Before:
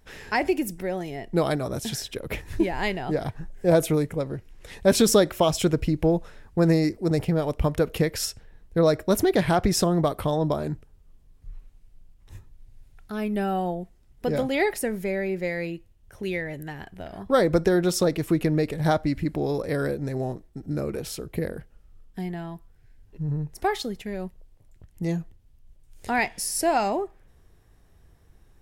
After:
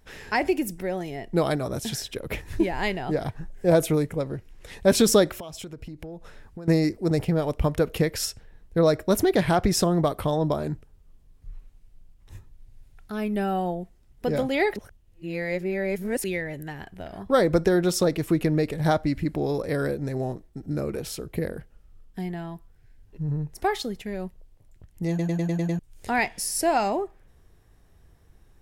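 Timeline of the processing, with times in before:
5.39–6.68 s: compression 8:1, threshold -35 dBFS
14.76–16.24 s: reverse
25.09 s: stutter in place 0.10 s, 7 plays

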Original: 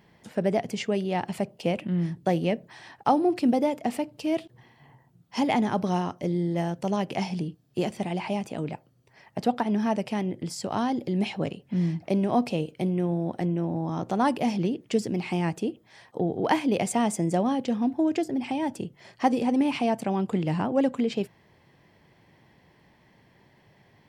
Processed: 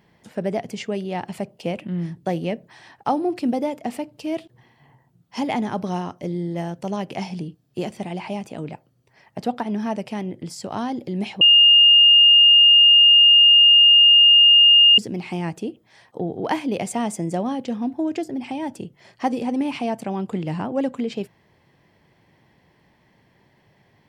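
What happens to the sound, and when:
11.41–14.98 s: bleep 2.83 kHz -8.5 dBFS

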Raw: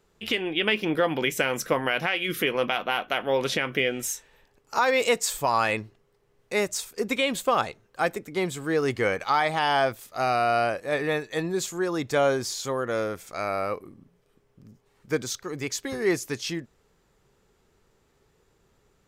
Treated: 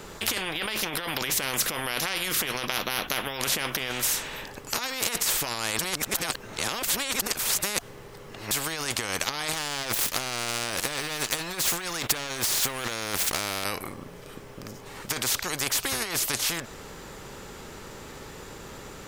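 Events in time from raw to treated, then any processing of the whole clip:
5.79–8.51 s: reverse
9.53–13.64 s: waveshaping leveller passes 2
whole clip: band-stop 700 Hz, Q 16; compressor with a negative ratio -29 dBFS, ratio -1; spectrum-flattening compressor 4:1; trim +6.5 dB

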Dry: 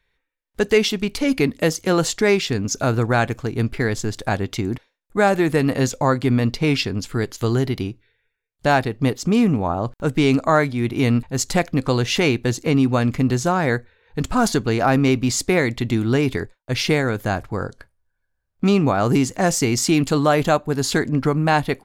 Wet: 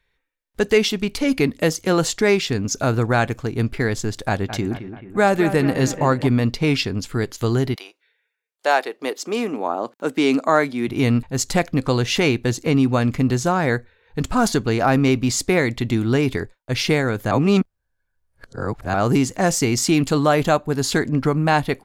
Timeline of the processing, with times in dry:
4.17–6.27 s: bucket-brigade echo 217 ms, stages 4096, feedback 52%, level -11 dB
7.74–10.87 s: high-pass 610 Hz -> 170 Hz 24 dB/octave
17.31–18.94 s: reverse

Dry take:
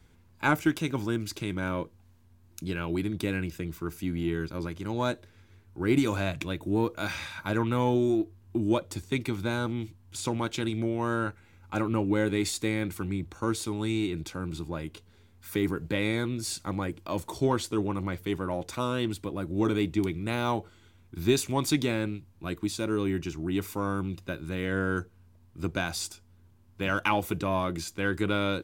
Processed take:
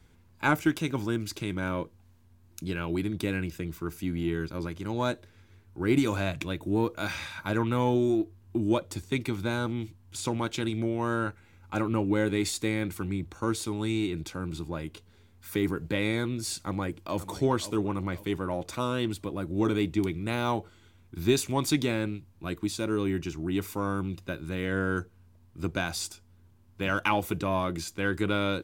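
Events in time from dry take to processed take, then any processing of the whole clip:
16.56–17.26 s: echo throw 530 ms, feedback 40%, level -13 dB

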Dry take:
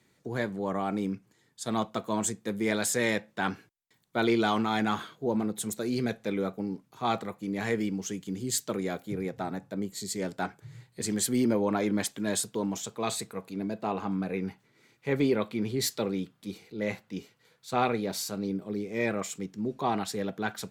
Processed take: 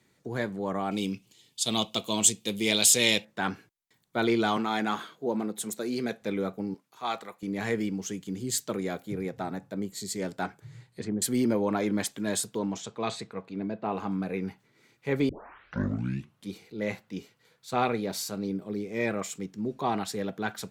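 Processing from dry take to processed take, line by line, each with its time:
0.91–3.25 s: resonant high shelf 2.2 kHz +9.5 dB, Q 3
4.57–6.22 s: high-pass 200 Hz
6.74–7.43 s: high-pass 840 Hz 6 dB/octave
10.68–11.22 s: low-pass that closes with the level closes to 580 Hz, closed at -26 dBFS
12.58–13.91 s: low-pass 7 kHz -> 2.7 kHz
15.29 s: tape start 1.21 s

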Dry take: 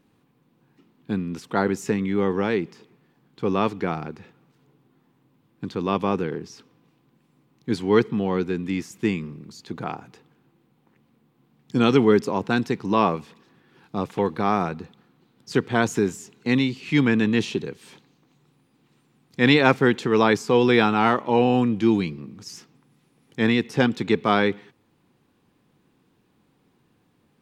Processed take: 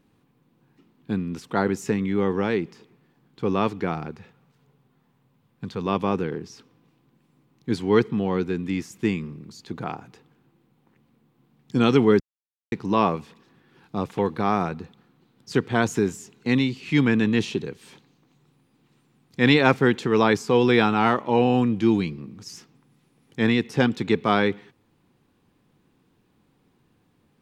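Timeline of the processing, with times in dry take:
4.11–5.86 s: peaking EQ 310 Hz -13 dB 0.3 oct
12.20–12.72 s: mute
whole clip: bass shelf 71 Hz +7.5 dB; trim -1 dB

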